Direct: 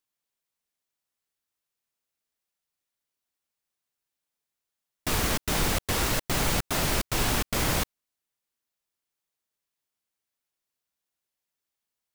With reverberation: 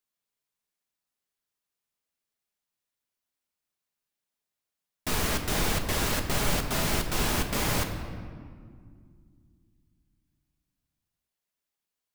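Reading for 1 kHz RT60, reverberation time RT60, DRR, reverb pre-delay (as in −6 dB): 1.9 s, 2.1 s, 4.0 dB, 5 ms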